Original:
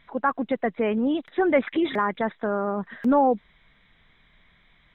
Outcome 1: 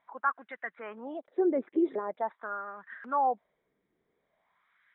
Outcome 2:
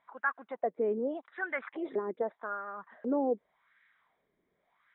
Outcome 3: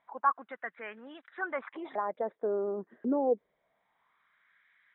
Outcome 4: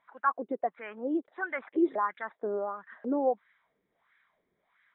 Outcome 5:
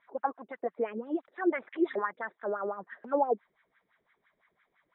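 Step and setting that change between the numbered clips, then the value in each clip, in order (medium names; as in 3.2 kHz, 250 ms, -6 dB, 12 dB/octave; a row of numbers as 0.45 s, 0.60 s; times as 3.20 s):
wah-wah, rate: 0.45 Hz, 0.85 Hz, 0.26 Hz, 1.5 Hz, 5.9 Hz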